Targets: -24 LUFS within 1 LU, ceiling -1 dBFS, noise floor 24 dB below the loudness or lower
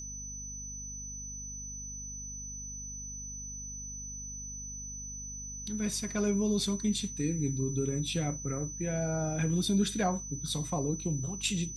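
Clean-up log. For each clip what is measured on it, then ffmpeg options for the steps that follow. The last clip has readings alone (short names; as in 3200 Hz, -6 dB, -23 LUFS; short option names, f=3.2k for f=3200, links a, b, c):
hum 50 Hz; harmonics up to 250 Hz; hum level -44 dBFS; steady tone 6000 Hz; tone level -40 dBFS; loudness -34.0 LUFS; peak -17.5 dBFS; loudness target -24.0 LUFS
-> -af "bandreject=f=50:t=h:w=6,bandreject=f=100:t=h:w=6,bandreject=f=150:t=h:w=6,bandreject=f=200:t=h:w=6,bandreject=f=250:t=h:w=6"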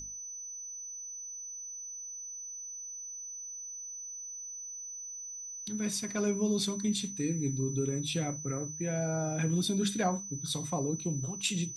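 hum none; steady tone 6000 Hz; tone level -40 dBFS
-> -af "bandreject=f=6k:w=30"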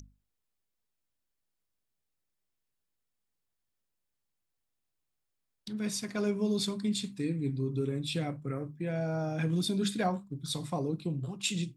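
steady tone none; loudness -33.0 LUFS; peak -18.0 dBFS; loudness target -24.0 LUFS
-> -af "volume=9dB"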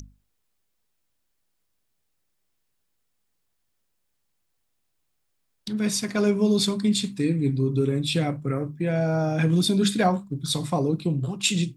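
loudness -24.0 LUFS; peak -9.0 dBFS; noise floor -74 dBFS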